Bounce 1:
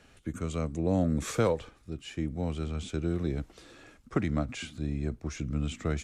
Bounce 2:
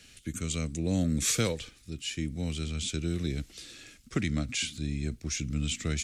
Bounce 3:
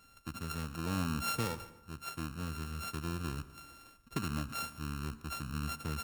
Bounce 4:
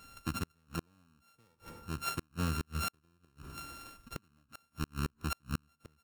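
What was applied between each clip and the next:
EQ curve 230 Hz 0 dB, 960 Hz -11 dB, 2200 Hz +6 dB, 4600 Hz +12 dB
sample sorter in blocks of 32 samples; plate-style reverb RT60 0.96 s, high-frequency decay 0.6×, pre-delay 85 ms, DRR 15.5 dB; gain -7 dB
flipped gate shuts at -29 dBFS, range -39 dB; gain +6.5 dB

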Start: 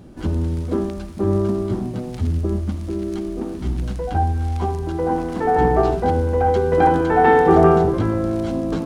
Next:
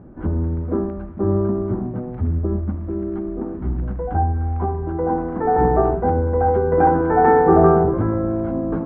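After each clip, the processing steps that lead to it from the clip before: LPF 1600 Hz 24 dB/oct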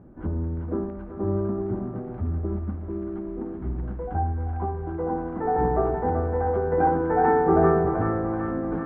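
thinning echo 0.383 s, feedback 82%, high-pass 940 Hz, level -4 dB; gain -6.5 dB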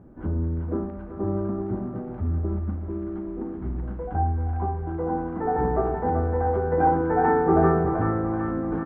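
doubler 37 ms -10.5 dB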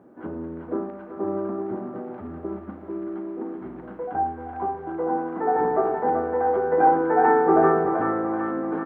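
HPF 320 Hz 12 dB/oct; gain +3.5 dB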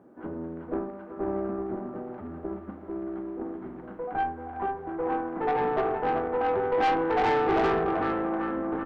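tube stage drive 20 dB, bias 0.6

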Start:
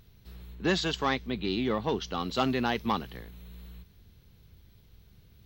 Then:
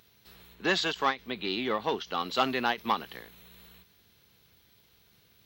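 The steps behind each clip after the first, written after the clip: HPF 750 Hz 6 dB/oct; dynamic EQ 6400 Hz, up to -5 dB, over -49 dBFS, Q 0.93; ending taper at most 290 dB/s; gain +5 dB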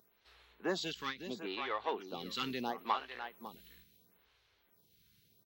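echo 0.553 s -10.5 dB; photocell phaser 0.74 Hz; gain -5 dB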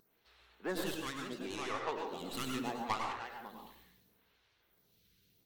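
tracing distortion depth 0.2 ms; plate-style reverb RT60 0.64 s, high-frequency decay 0.55×, pre-delay 85 ms, DRR 1.5 dB; vibrato 12 Hz 70 cents; gain -3 dB

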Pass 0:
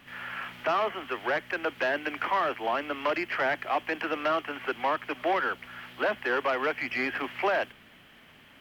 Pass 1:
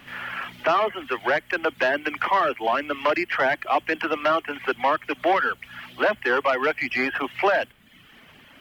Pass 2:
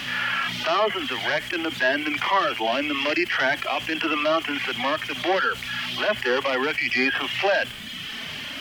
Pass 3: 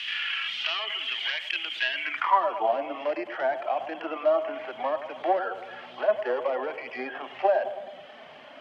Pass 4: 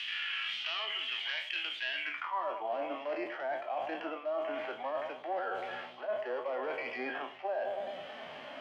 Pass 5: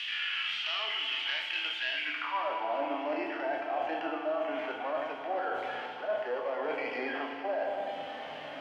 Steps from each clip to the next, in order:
reverb removal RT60 0.75 s; gain +6.5 dB
bell 4800 Hz +14 dB 1.9 oct; harmonic-percussive split percussive -17 dB; fast leveller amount 50%
transient shaper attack +6 dB, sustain +1 dB; band-pass sweep 2900 Hz -> 670 Hz, 1.93–2.45; band-limited delay 0.106 s, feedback 60%, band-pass 610 Hz, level -10.5 dB
spectral trails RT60 0.35 s; reverse; compressor 5:1, threshold -34 dBFS, peak gain reduction 17 dB; reverse
FDN reverb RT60 3.2 s, high-frequency decay 0.9×, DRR 3 dB; gain +1.5 dB

